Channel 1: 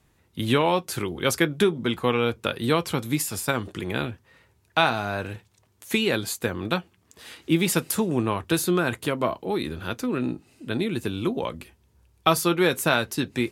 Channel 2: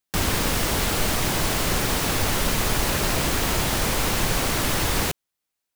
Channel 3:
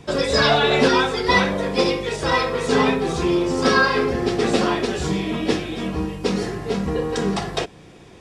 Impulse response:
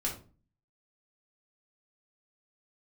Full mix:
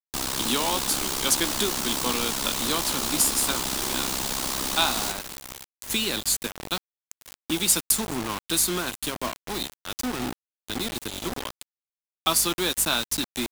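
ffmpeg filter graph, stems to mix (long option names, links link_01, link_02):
-filter_complex "[0:a]highpass=48,highshelf=frequency=2700:gain=11.5,aeval=exprs='val(0)+0.0224*(sin(2*PI*50*n/s)+sin(2*PI*2*50*n/s)/2+sin(2*PI*3*50*n/s)/3+sin(2*PI*4*50*n/s)/4+sin(2*PI*5*50*n/s)/5)':channel_layout=same,volume=-7.5dB[link_01];[1:a]tremolo=f=66:d=0.857,acrusher=bits=5:mix=0:aa=0.000001,volume=-3.5dB,asplit=2[link_02][link_03];[link_03]volume=-10.5dB,aecho=0:1:528|1056|1584|2112|2640|3168:1|0.43|0.185|0.0795|0.0342|0.0147[link_04];[link_01][link_02][link_04]amix=inputs=3:normalize=0,equalizer=frequency=125:width_type=o:width=1:gain=-5,equalizer=frequency=250:width_type=o:width=1:gain=6,equalizer=frequency=500:width_type=o:width=1:gain=-5,equalizer=frequency=1000:width_type=o:width=1:gain=4,equalizer=frequency=2000:width_type=o:width=1:gain=-6,equalizer=frequency=4000:width_type=o:width=1:gain=5,equalizer=frequency=8000:width_type=o:width=1:gain=5,acrossover=split=220|3000[link_05][link_06][link_07];[link_05]acompressor=threshold=-38dB:ratio=6[link_08];[link_08][link_06][link_07]amix=inputs=3:normalize=0,acrusher=bits=4:mix=0:aa=0.000001"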